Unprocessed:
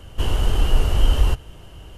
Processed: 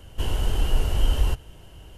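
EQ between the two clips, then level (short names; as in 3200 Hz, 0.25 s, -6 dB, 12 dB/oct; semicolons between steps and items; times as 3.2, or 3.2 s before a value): high shelf 9100 Hz +5 dB; notch 1200 Hz, Q 12; -4.5 dB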